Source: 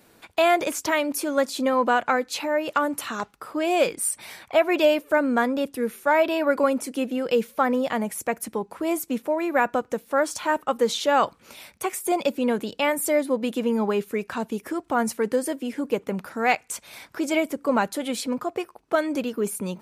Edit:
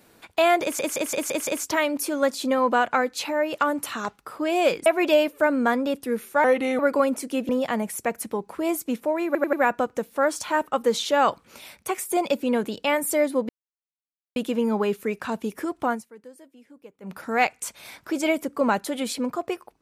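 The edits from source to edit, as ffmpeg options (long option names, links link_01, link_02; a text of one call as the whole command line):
ffmpeg -i in.wav -filter_complex "[0:a]asplit=16[link_01][link_02][link_03][link_04][link_05][link_06][link_07][link_08][link_09][link_10][link_11][link_12][link_13][link_14][link_15][link_16];[link_01]atrim=end=0.792[link_17];[link_02]atrim=start=0.618:end=0.792[link_18];[link_03]atrim=start=0.618:end=0.792[link_19];[link_04]atrim=start=0.618:end=0.792[link_20];[link_05]atrim=start=0.618:end=0.792[link_21];[link_06]atrim=start=0.618:end=4.012[link_22];[link_07]atrim=start=4.568:end=6.154[link_23];[link_08]atrim=start=6.15:end=6.43,asetpts=PTS-STARTPTS,asetrate=35280,aresample=44100[link_24];[link_09]atrim=start=6.426:end=7.132[link_25];[link_10]atrim=start=7.708:end=9.572[link_26];[link_11]atrim=start=9.478:end=9.572[link_27];[link_12]atrim=start=9.478:end=9.572[link_28];[link_13]atrim=start=9.478:end=13.44,asetpts=PTS-STARTPTS,afade=type=out:start_time=3.958:duration=0.004:curve=hsin,apad=pad_dur=0.87[link_29];[link_14]atrim=start=13.44:end=15.11,asetpts=PTS-STARTPTS,afade=type=in:duration=0.004:curve=hsin,afade=type=out:start_time=1.5:duration=0.17:silence=0.0841395[link_30];[link_15]atrim=start=15.11:end=16.09,asetpts=PTS-STARTPTS,volume=-21.5dB[link_31];[link_16]atrim=start=16.09,asetpts=PTS-STARTPTS,afade=type=in:duration=0.17:silence=0.0841395[link_32];[link_17][link_18]acrossfade=duration=0.004:curve1=hsin:curve2=hsin[link_33];[link_33][link_19]acrossfade=duration=0.004:curve1=hsin:curve2=hsin[link_34];[link_34][link_20]acrossfade=duration=0.004:curve1=hsin:curve2=hsin[link_35];[link_35][link_21]acrossfade=duration=0.004:curve1=hsin:curve2=hsin[link_36];[link_36][link_22]acrossfade=duration=0.004:curve1=hsin:curve2=hsin[link_37];[link_37][link_23]acrossfade=duration=0.004:curve1=hsin:curve2=hsin[link_38];[link_38][link_24]acrossfade=duration=0.004:curve1=hsin:curve2=hsin[link_39];[link_39][link_25]acrossfade=duration=0.004:curve1=hsin:curve2=hsin[link_40];[link_40][link_26]acrossfade=duration=0.004:curve1=hsin:curve2=hsin[link_41];[link_41][link_27]acrossfade=duration=0.004:curve1=hsin:curve2=hsin[link_42];[link_42][link_28]acrossfade=duration=0.004:curve1=hsin:curve2=hsin[link_43];[link_29][link_30][link_31][link_32]concat=n=4:v=0:a=1[link_44];[link_43][link_44]acrossfade=duration=0.004:curve1=hsin:curve2=hsin" out.wav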